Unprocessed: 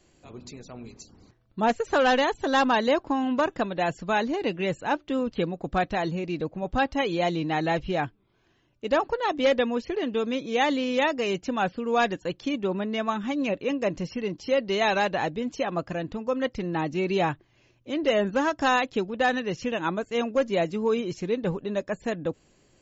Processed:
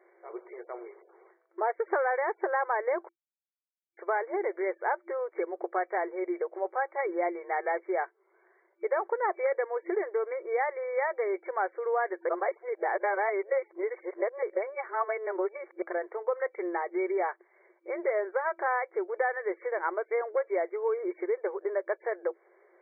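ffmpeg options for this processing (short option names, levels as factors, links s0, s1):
-filter_complex "[0:a]asplit=5[s0][s1][s2][s3][s4];[s0]atrim=end=3.09,asetpts=PTS-STARTPTS,afade=t=out:st=3.086:d=0.004:c=hsin[s5];[s1]atrim=start=3.09:end=3.97,asetpts=PTS-STARTPTS,volume=0[s6];[s2]atrim=start=3.97:end=12.292,asetpts=PTS-STARTPTS,afade=t=in:d=0.004:c=hsin[s7];[s3]atrim=start=12.288:end=15.822,asetpts=PTS-STARTPTS,areverse[s8];[s4]atrim=start=15.818[s9];[s5][s6][s7]concat=n=3:v=0:a=1[s10];[s10][s8]acrossfade=d=0.004:c1=hsin:c2=hsin[s11];[s11][s9]acrossfade=d=0.004:c1=hsin:c2=hsin,acompressor=threshold=0.0316:ratio=6,afftfilt=real='re*between(b*sr/4096,340,2300)':imag='im*between(b*sr/4096,340,2300)':win_size=4096:overlap=0.75,volume=1.78"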